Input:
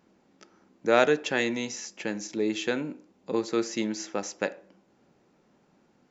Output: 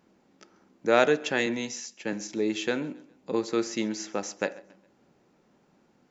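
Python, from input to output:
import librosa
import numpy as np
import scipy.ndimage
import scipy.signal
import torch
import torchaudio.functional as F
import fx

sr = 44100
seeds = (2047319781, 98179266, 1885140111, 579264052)

p1 = x + fx.echo_feedback(x, sr, ms=136, feedback_pct=39, wet_db=-22.5, dry=0)
y = fx.band_widen(p1, sr, depth_pct=70, at=(1.46, 2.13))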